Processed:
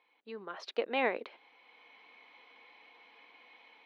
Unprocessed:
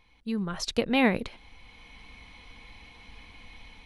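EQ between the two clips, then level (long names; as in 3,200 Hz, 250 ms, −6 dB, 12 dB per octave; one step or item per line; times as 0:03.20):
high-pass filter 370 Hz 24 dB per octave
high-frequency loss of the air 290 metres
−3.0 dB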